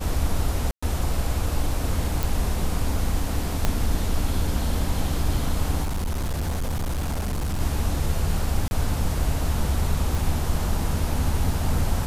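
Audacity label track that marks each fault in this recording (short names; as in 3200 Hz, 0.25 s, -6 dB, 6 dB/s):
0.710000	0.820000	gap 0.115 s
2.230000	2.230000	pop
3.650000	3.650000	pop -7 dBFS
5.830000	7.610000	clipped -22.5 dBFS
8.680000	8.710000	gap 31 ms
10.150000	10.150000	pop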